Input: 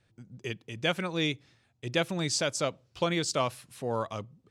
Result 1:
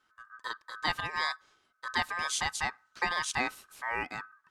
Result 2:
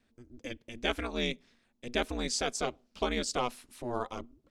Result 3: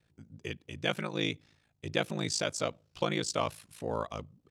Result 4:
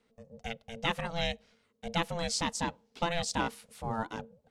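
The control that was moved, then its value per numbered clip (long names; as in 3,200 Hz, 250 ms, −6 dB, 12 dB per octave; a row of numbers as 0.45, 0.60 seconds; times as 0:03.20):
ring modulation, frequency: 1,400, 120, 27, 340 Hertz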